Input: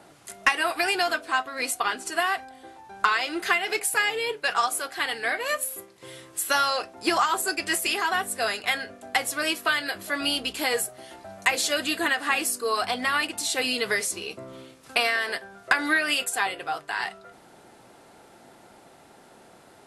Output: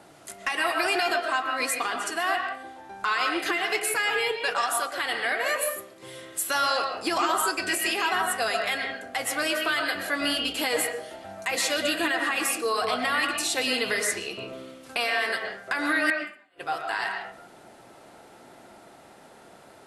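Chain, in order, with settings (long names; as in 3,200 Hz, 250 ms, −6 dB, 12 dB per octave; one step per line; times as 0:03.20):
0:16.05–0:16.64: gate with flip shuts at −18 dBFS, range −41 dB
brickwall limiter −16.5 dBFS, peak gain reduction 9 dB
on a send: band-pass filter 150–3,300 Hz + convolution reverb RT60 0.45 s, pre-delay 85 ms, DRR 2.5 dB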